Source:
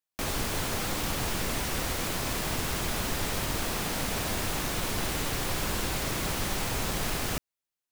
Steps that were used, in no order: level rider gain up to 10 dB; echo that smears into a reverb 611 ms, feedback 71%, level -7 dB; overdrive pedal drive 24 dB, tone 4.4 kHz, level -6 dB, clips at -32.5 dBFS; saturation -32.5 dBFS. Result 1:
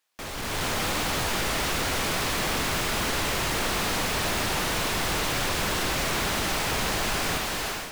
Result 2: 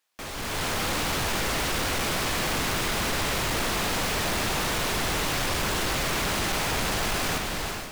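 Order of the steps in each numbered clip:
saturation > echo that smears into a reverb > overdrive pedal > level rider; overdrive pedal > echo that smears into a reverb > saturation > level rider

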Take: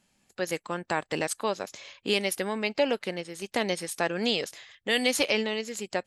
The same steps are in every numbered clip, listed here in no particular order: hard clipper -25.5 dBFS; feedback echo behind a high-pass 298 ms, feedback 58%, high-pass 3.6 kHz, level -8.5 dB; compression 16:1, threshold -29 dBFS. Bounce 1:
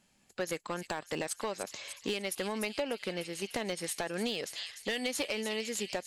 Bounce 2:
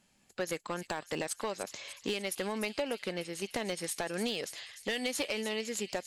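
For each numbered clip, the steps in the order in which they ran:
feedback echo behind a high-pass > compression > hard clipper; compression > feedback echo behind a high-pass > hard clipper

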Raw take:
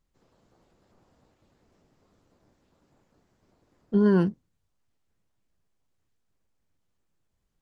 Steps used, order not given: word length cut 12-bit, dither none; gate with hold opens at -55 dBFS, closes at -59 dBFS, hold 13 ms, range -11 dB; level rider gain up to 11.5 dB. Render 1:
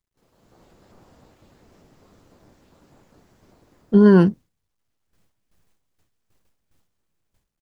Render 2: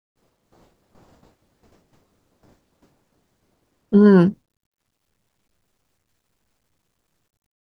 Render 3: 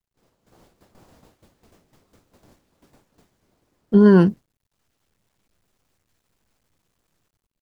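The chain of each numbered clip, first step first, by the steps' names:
level rider > word length cut > gate with hold; gate with hold > level rider > word length cut; word length cut > gate with hold > level rider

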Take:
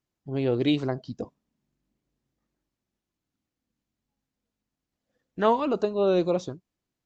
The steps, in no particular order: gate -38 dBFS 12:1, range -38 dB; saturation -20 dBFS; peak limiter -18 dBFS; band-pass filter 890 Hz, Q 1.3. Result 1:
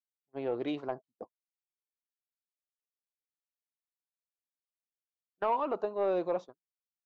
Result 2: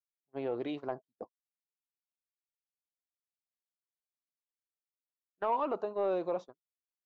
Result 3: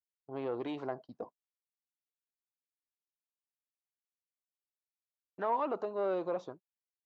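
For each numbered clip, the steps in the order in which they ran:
band-pass filter > peak limiter > saturation > gate; peak limiter > band-pass filter > gate > saturation; peak limiter > gate > saturation > band-pass filter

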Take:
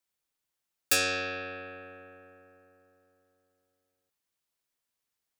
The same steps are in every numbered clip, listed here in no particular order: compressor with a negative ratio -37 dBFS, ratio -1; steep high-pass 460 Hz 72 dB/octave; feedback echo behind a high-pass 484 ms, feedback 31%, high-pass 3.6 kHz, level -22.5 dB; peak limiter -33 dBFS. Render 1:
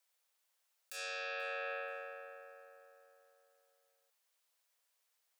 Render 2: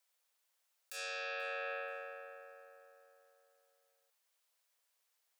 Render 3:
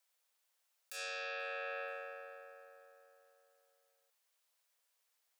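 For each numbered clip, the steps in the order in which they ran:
compressor with a negative ratio > steep high-pass > peak limiter > feedback echo behind a high-pass; steep high-pass > compressor with a negative ratio > peak limiter > feedback echo behind a high-pass; compressor with a negative ratio > feedback echo behind a high-pass > peak limiter > steep high-pass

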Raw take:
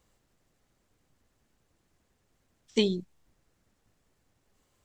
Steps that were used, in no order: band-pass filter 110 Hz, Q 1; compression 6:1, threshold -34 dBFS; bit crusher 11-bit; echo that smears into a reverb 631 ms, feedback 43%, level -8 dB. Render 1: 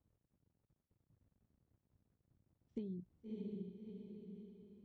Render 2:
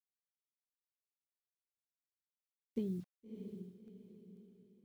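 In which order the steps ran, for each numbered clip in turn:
echo that smears into a reverb > compression > bit crusher > band-pass filter; band-pass filter > compression > bit crusher > echo that smears into a reverb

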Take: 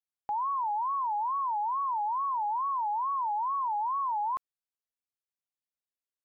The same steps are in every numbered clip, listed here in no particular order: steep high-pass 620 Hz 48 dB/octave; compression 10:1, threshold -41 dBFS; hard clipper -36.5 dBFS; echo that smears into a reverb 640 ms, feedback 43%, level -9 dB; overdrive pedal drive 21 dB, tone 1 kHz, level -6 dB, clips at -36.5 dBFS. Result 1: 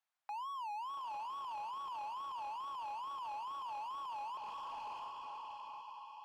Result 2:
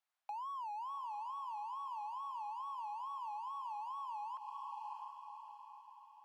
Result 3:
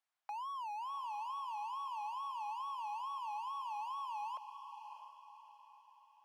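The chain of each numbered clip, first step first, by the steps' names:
steep high-pass > hard clipper > echo that smears into a reverb > compression > overdrive pedal; overdrive pedal > echo that smears into a reverb > compression > hard clipper > steep high-pass; steep high-pass > overdrive pedal > hard clipper > compression > echo that smears into a reverb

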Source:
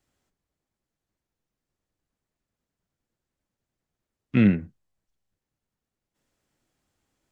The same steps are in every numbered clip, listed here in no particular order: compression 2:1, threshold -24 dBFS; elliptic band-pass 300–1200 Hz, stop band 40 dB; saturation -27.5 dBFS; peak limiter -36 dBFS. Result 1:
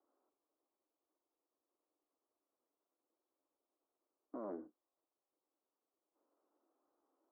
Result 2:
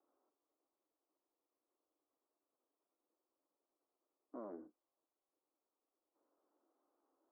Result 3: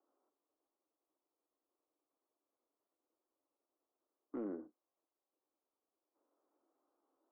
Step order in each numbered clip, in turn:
compression > saturation > elliptic band-pass > peak limiter; compression > saturation > peak limiter > elliptic band-pass; compression > elliptic band-pass > saturation > peak limiter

